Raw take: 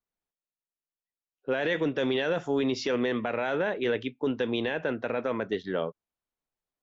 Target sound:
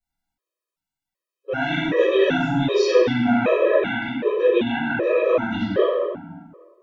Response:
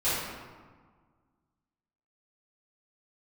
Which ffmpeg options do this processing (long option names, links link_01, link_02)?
-filter_complex "[0:a]asettb=1/sr,asplit=3[link_01][link_02][link_03];[link_01]atrim=end=3.504[link_04];[link_02]atrim=start=3.5:end=4.93,asetpts=PTS-STARTPTS,afade=type=in:duration=0.004:curve=qsin,afade=type=out:start_time=1.426:duration=0.004:curve=qsin,bass=frequency=250:gain=-5,treble=frequency=4000:gain=-11[link_05];[link_03]atrim=start=4.926[link_06];[link_04][link_05]acrossfade=duration=0.004:curve1=hsin:curve2=qsin[link_07];[link_07][link_06]acrossfade=duration=0.004:curve1=qsin:curve2=hsin[link_08];[1:a]atrim=start_sample=2205[link_09];[link_08][link_09]afir=irnorm=-1:irlink=0,afftfilt=real='re*gt(sin(2*PI*1.3*pts/sr)*(1-2*mod(floor(b*sr/1024/330),2)),0)':imag='im*gt(sin(2*PI*1.3*pts/sr)*(1-2*mod(floor(b*sr/1024/330),2)),0)':win_size=1024:overlap=0.75"